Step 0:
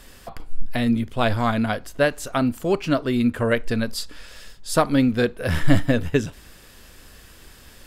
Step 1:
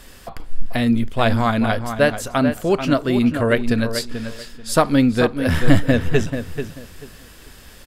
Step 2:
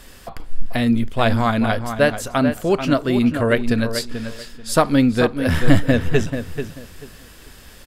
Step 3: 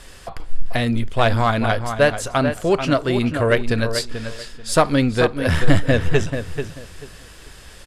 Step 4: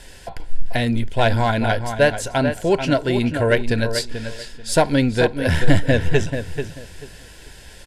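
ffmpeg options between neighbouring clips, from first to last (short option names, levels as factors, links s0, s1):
-filter_complex "[0:a]asplit=2[s0][s1];[s1]adelay=437,lowpass=f=3400:p=1,volume=0.376,asplit=2[s2][s3];[s3]adelay=437,lowpass=f=3400:p=1,volume=0.22,asplit=2[s4][s5];[s5]adelay=437,lowpass=f=3400:p=1,volume=0.22[s6];[s0][s2][s4][s6]amix=inputs=4:normalize=0,volume=1.41"
-af anull
-af "lowpass=f=11000:w=0.5412,lowpass=f=11000:w=1.3066,equalizer=f=240:w=2.7:g=-7,aeval=exprs='0.891*(cos(1*acos(clip(val(0)/0.891,-1,1)))-cos(1*PI/2))+0.0398*(cos(5*acos(clip(val(0)/0.891,-1,1)))-cos(5*PI/2))+0.0224*(cos(8*acos(clip(val(0)/0.891,-1,1)))-cos(8*PI/2))':c=same"
-af "asuperstop=centerf=1200:order=8:qfactor=4.4"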